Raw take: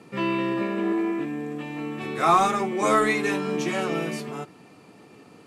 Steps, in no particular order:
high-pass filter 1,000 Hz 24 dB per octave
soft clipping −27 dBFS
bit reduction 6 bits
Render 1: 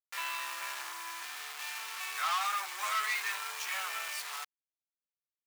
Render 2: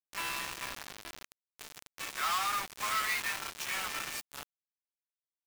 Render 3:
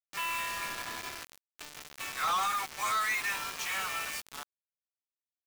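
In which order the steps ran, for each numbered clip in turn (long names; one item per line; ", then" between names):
bit reduction, then soft clipping, then high-pass filter
soft clipping, then high-pass filter, then bit reduction
high-pass filter, then bit reduction, then soft clipping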